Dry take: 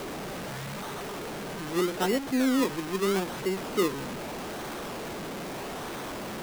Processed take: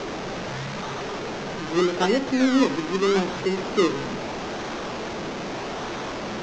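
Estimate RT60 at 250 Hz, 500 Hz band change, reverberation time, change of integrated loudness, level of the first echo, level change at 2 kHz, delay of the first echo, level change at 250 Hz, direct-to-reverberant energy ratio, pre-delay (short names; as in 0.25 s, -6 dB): 1.9 s, +6.0 dB, 1.7 s, +5.5 dB, none, +6.0 dB, none, +5.5 dB, 11.5 dB, 9 ms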